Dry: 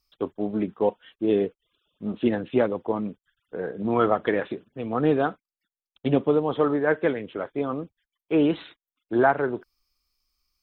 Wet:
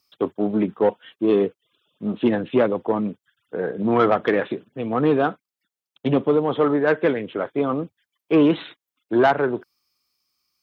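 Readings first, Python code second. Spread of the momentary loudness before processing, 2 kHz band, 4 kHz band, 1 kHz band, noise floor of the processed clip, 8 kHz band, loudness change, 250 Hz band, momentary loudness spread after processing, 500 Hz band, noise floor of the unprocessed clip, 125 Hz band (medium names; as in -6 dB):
12 LU, +3.0 dB, +5.0 dB, +3.5 dB, under -85 dBFS, no reading, +4.0 dB, +4.0 dB, 11 LU, +4.0 dB, under -85 dBFS, +3.0 dB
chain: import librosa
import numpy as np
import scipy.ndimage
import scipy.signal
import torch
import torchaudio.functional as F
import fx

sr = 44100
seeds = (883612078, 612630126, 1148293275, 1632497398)

p1 = fx.rider(x, sr, range_db=4, speed_s=2.0)
p2 = x + F.gain(torch.from_numpy(p1), -2.0).numpy()
p3 = 10.0 ** (-8.5 / 20.0) * np.tanh(p2 / 10.0 ** (-8.5 / 20.0))
y = scipy.signal.sosfilt(scipy.signal.butter(4, 100.0, 'highpass', fs=sr, output='sos'), p3)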